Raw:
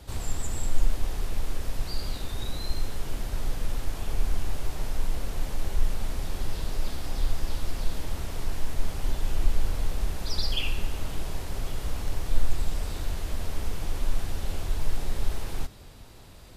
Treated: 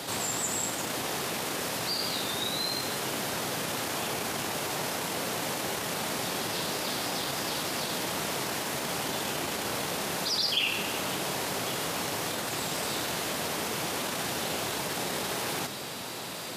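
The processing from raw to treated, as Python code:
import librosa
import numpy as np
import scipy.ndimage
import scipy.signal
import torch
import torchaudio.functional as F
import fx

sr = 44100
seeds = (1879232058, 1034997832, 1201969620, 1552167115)

p1 = 10.0 ** (-18.5 / 20.0) * np.tanh(x / 10.0 ** (-18.5 / 20.0))
p2 = x + (p1 * 10.0 ** (-4.5 / 20.0))
p3 = scipy.signal.sosfilt(scipy.signal.butter(4, 140.0, 'highpass', fs=sr, output='sos'), p2)
p4 = fx.low_shelf(p3, sr, hz=340.0, db=-8.5)
y = fx.env_flatten(p4, sr, amount_pct=50)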